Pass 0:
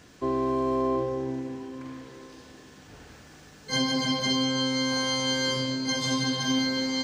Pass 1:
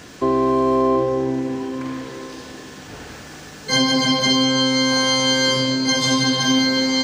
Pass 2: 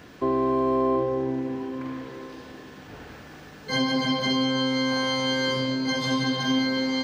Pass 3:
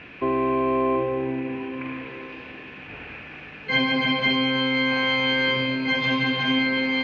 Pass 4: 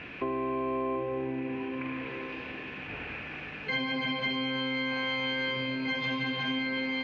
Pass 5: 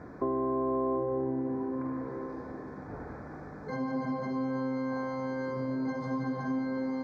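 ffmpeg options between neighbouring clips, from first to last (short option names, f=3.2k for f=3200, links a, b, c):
-filter_complex "[0:a]lowshelf=f=120:g=-6,asplit=2[a][b];[b]acompressor=threshold=-35dB:ratio=6,volume=0.5dB[c];[a][c]amix=inputs=2:normalize=0,volume=7dB"
-af "equalizer=f=7.5k:w=0.77:g=-12,volume=-5.5dB"
-af "lowpass=f=2.5k:t=q:w=8.2"
-af "acompressor=threshold=-33dB:ratio=2.5"
-af "asuperstop=centerf=2800:order=4:qfactor=0.51,volume=2dB"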